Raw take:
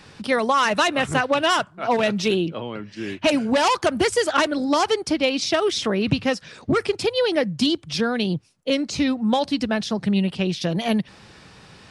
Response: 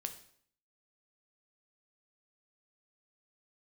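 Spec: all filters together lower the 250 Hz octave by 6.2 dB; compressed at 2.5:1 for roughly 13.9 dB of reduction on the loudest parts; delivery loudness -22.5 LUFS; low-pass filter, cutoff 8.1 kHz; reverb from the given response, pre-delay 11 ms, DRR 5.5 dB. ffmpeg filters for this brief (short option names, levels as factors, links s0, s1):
-filter_complex "[0:a]lowpass=8100,equalizer=f=250:t=o:g=-8,acompressor=threshold=0.0126:ratio=2.5,asplit=2[s0][s1];[1:a]atrim=start_sample=2205,adelay=11[s2];[s1][s2]afir=irnorm=-1:irlink=0,volume=0.631[s3];[s0][s3]amix=inputs=2:normalize=0,volume=3.98"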